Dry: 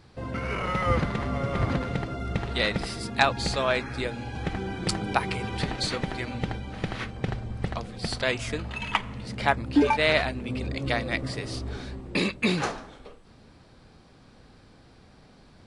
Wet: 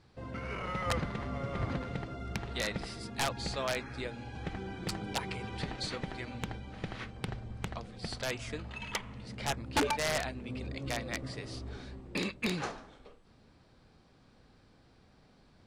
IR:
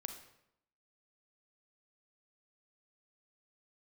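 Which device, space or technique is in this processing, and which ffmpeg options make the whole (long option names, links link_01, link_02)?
overflowing digital effects unit: -af "aeval=exprs='(mod(4.73*val(0)+1,2)-1)/4.73':channel_layout=same,lowpass=9500,volume=-8.5dB"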